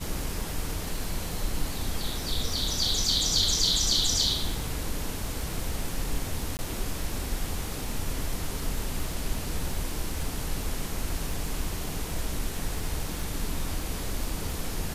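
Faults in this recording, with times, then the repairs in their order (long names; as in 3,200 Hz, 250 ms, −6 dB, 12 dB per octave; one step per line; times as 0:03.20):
surface crackle 20 per second −34 dBFS
0:06.57–0:06.59: drop-out 19 ms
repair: click removal
repair the gap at 0:06.57, 19 ms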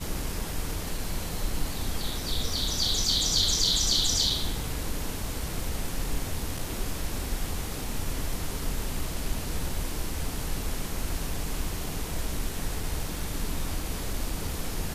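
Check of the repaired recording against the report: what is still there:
none of them is left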